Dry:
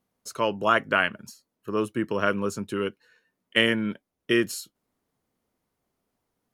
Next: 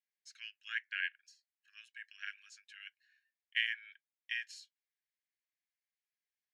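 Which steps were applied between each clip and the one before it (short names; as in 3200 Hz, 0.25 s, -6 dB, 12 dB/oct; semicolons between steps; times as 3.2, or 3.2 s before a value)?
rippled Chebyshev high-pass 1600 Hz, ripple 3 dB; air absorption 140 m; gain -6.5 dB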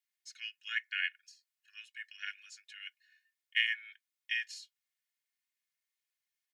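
HPF 1400 Hz 12 dB/oct; comb 2.8 ms, depth 72%; gain +3 dB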